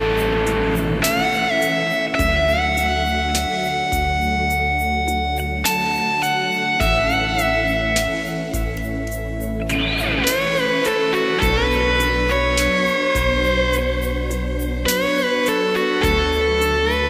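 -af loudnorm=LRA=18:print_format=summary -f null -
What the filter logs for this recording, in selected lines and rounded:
Input Integrated:    -19.0 LUFS
Input True Peak:      -3.2 dBTP
Input LRA:             1.9 LU
Input Threshold:     -29.0 LUFS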